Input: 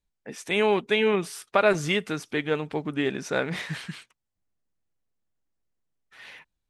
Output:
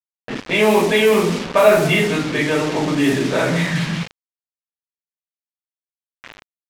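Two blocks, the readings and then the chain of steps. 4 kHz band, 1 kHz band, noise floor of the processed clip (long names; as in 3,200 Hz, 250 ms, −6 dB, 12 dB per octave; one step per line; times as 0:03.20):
+8.5 dB, +8.0 dB, below −85 dBFS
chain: high-pass filter 51 Hz 6 dB per octave
high-frequency loss of the air 290 metres
on a send: echo with shifted repeats 180 ms, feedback 35%, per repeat +44 Hz, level −16.5 dB
on the sum: rectangular room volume 330 cubic metres, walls furnished, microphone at 5.6 metres
in parallel at +2.5 dB: brickwall limiter −18 dBFS, peak gain reduction 18.5 dB
on the sum: parametric band 4,300 Hz +6 dB 1.7 octaves
bit reduction 4 bits
low-pass that shuts in the quiet parts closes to 2,900 Hz, open at −6 dBFS
level −3.5 dB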